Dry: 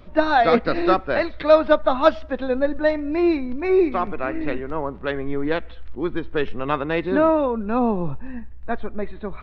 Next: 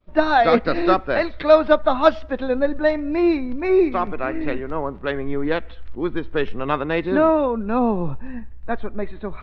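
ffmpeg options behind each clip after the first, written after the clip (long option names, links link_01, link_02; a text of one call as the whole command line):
ffmpeg -i in.wav -af "agate=range=-33dB:threshold=-34dB:ratio=3:detection=peak,volume=1dB" out.wav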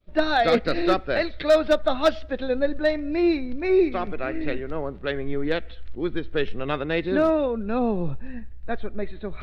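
ffmpeg -i in.wav -af "equalizer=frequency=250:width_type=o:width=0.67:gain=-3,equalizer=frequency=1000:width_type=o:width=0.67:gain=-10,equalizer=frequency=4000:width_type=o:width=0.67:gain=4,areverse,acompressor=mode=upward:threshold=-33dB:ratio=2.5,areverse,asoftclip=type=hard:threshold=-9.5dB,volume=-1.5dB" out.wav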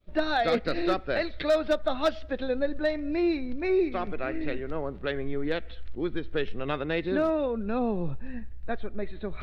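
ffmpeg -i in.wav -af "acompressor=threshold=-31dB:ratio=1.5" out.wav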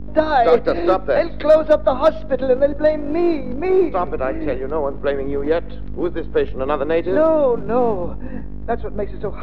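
ffmpeg -i in.wav -filter_complex "[0:a]equalizer=frequency=250:width_type=o:width=1:gain=8,equalizer=frequency=500:width_type=o:width=1:gain=10,equalizer=frequency=1000:width_type=o:width=1:gain=12,aeval=exprs='val(0)+0.0501*(sin(2*PI*50*n/s)+sin(2*PI*2*50*n/s)/2+sin(2*PI*3*50*n/s)/3+sin(2*PI*4*50*n/s)/4+sin(2*PI*5*50*n/s)/5)':channel_layout=same,acrossover=split=260|1700[link_01][link_02][link_03];[link_01]aeval=exprs='abs(val(0))':channel_layout=same[link_04];[link_04][link_02][link_03]amix=inputs=3:normalize=0" out.wav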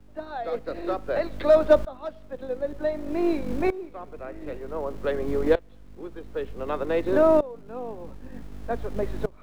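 ffmpeg -i in.wav -filter_complex "[0:a]acrossover=split=190|480[link_01][link_02][link_03];[link_01]acrusher=bits=4:dc=4:mix=0:aa=0.000001[link_04];[link_04][link_02][link_03]amix=inputs=3:normalize=0,aeval=exprs='val(0)*pow(10,-21*if(lt(mod(-0.54*n/s,1),2*abs(-0.54)/1000),1-mod(-0.54*n/s,1)/(2*abs(-0.54)/1000),(mod(-0.54*n/s,1)-2*abs(-0.54)/1000)/(1-2*abs(-0.54)/1000))/20)':channel_layout=same,volume=-1.5dB" out.wav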